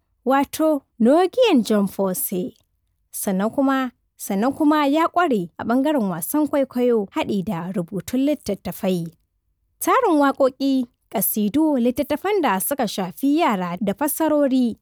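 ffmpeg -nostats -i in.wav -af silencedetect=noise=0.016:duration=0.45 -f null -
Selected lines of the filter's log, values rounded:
silence_start: 2.50
silence_end: 3.14 | silence_duration: 0.64
silence_start: 9.13
silence_end: 9.81 | silence_duration: 0.68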